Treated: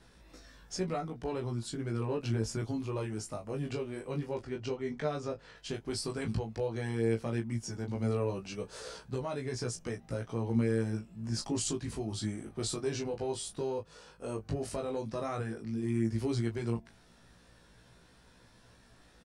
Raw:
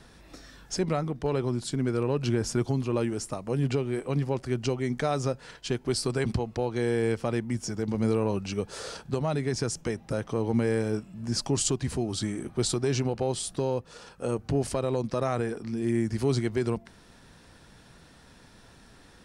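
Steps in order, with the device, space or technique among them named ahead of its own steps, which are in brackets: 4.42–5.56 s: distance through air 83 m; double-tracked vocal (doubling 18 ms -7 dB; chorus 0.11 Hz, delay 16 ms, depth 4.1 ms); trim -4.5 dB

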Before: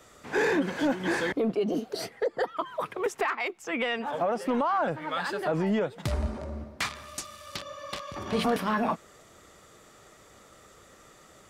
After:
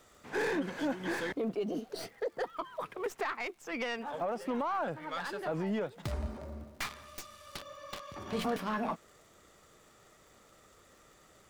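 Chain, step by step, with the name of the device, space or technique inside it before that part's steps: record under a worn stylus (tracing distortion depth 0.098 ms; crackle 120 per s -46 dBFS; pink noise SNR 36 dB); trim -7 dB

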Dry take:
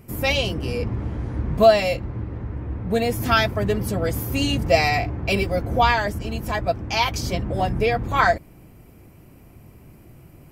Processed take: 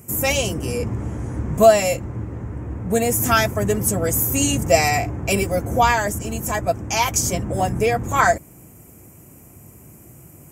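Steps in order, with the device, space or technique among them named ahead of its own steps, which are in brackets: budget condenser microphone (high-pass 70 Hz; resonant high shelf 5.5 kHz +9.5 dB, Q 3); trim +2 dB

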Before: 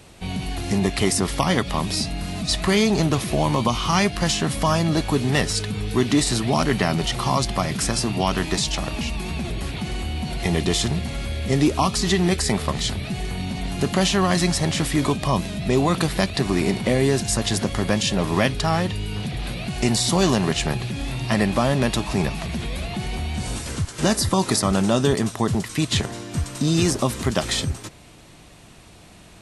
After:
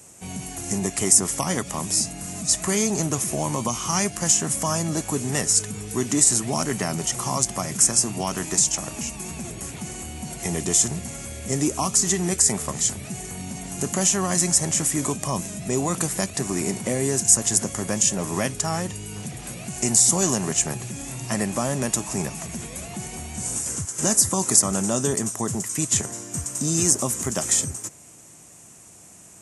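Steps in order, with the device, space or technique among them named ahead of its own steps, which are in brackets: budget condenser microphone (high-pass 99 Hz 12 dB/octave; resonant high shelf 5.3 kHz +10 dB, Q 3); trim -5 dB

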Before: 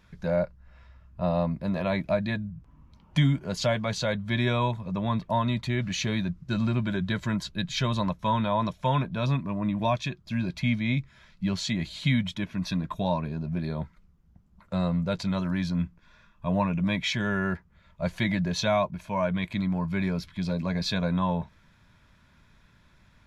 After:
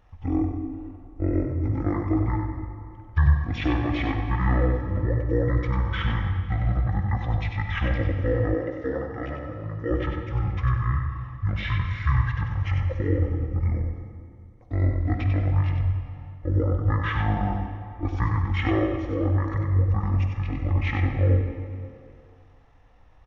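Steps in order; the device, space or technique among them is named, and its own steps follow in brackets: monster voice (pitch shift -11.5 st; bass shelf 140 Hz +3.5 dB; delay 95 ms -6 dB; reverberation RT60 2.3 s, pre-delay 41 ms, DRR 5.5 dB); 8.54–9.91 s: high-pass 330 Hz 6 dB/octave

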